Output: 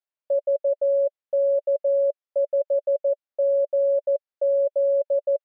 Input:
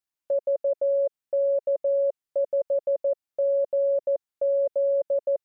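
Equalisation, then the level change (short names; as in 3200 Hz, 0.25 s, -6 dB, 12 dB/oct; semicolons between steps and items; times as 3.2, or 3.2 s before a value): HPF 400 Hz 12 dB/oct; air absorption 190 m; bell 580 Hz +7.5 dB 0.3 oct; -2.5 dB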